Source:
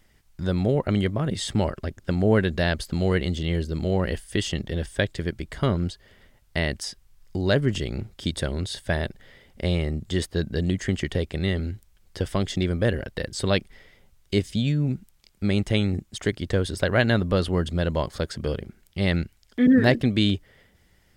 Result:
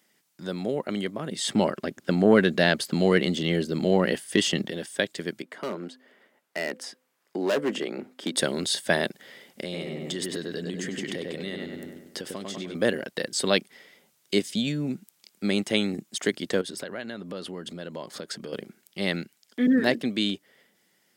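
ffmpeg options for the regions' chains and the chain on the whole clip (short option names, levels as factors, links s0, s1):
-filter_complex "[0:a]asettb=1/sr,asplit=3[s0][s1][s2];[s0]atrim=end=1.444[s3];[s1]atrim=start=1.44:end=4.7,asetpts=PTS-STARTPTS,afade=t=in:d=0.004:c=qsin,afade=t=out:st=3.256:d=0.004:c=qsin,bass=f=250:g=3,treble=f=4000:g=-5,acontrast=59[s4];[s2]atrim=start=4.696[s5];[s3][s4]acrossfade=d=0.004:c1=hsin:c2=qsin[s6];[s6][s5]acrossfade=d=0.004:c1=qsin:c2=hsin,asettb=1/sr,asplit=3[s7][s8][s9];[s7]atrim=end=5.424[s10];[s8]atrim=start=5.42:end=8.36,asetpts=PTS-STARTPTS,afade=t=in:d=0.004:c=qsin,afade=t=out:st=2.936:d=0.004:c=qsin,acrossover=split=220 2400:gain=0.112 1 0.224[s11][s12][s13];[s11][s12][s13]amix=inputs=3:normalize=0,bandreject=f=255:t=h:w=4,bandreject=f=510:t=h:w=4,asoftclip=type=hard:threshold=0.0668[s14];[s9]atrim=start=8.356[s15];[s10][s14]acrossfade=d=0.004:c1=hsin:c2=qsin[s16];[s16][s15]acrossfade=d=0.004:c1=qsin:c2=hsin,asettb=1/sr,asplit=3[s17][s18][s19];[s17]atrim=end=9.624[s20];[s18]atrim=start=9.62:end=12.75,asetpts=PTS-STARTPTS,afade=t=in:d=0.004:c=qsin,afade=t=out:st=3.126:d=0.004:c=qsin,asplit=2[s21][s22];[s22]adelay=98,lowpass=f=3300:p=1,volume=0.631,asplit=2[s23][s24];[s24]adelay=98,lowpass=f=3300:p=1,volume=0.54,asplit=2[s25][s26];[s26]adelay=98,lowpass=f=3300:p=1,volume=0.54,asplit=2[s27][s28];[s28]adelay=98,lowpass=f=3300:p=1,volume=0.54,asplit=2[s29][s30];[s30]adelay=98,lowpass=f=3300:p=1,volume=0.54,asplit=2[s31][s32];[s32]adelay=98,lowpass=f=3300:p=1,volume=0.54,asplit=2[s33][s34];[s34]adelay=98,lowpass=f=3300:p=1,volume=0.54[s35];[s21][s23][s25][s27][s29][s31][s33][s35]amix=inputs=8:normalize=0,atrim=end_sample=138033,acompressor=threshold=0.0316:ratio=6:attack=3.2:release=140:knee=1:detection=peak[s36];[s19]atrim=start=12.746[s37];[s20][s36]acrossfade=d=0.004:c1=hsin:c2=qsin[s38];[s38][s37]acrossfade=d=0.004:c1=qsin:c2=hsin,asettb=1/sr,asplit=3[s39][s40][s41];[s39]atrim=end=16.614[s42];[s40]atrim=start=16.61:end=18.53,asetpts=PTS-STARTPTS,afade=t=in:d=0.004:c=qsin,afade=t=out:st=1.916:d=0.004:c=qsin,highshelf=f=5300:g=-4.5,bandreject=f=1100:w=26,acompressor=threshold=0.0282:ratio=6:attack=3.2:release=140:knee=1:detection=peak[s43];[s41]atrim=start=18.526[s44];[s42][s43]acrossfade=d=0.004:c1=hsin:c2=qsin[s45];[s45][s44]acrossfade=d=0.004:c1=qsin:c2=hsin,highpass=f=190:w=0.5412,highpass=f=190:w=1.3066,highshelf=f=4300:g=7,dynaudnorm=f=380:g=9:m=3.16,volume=0.596"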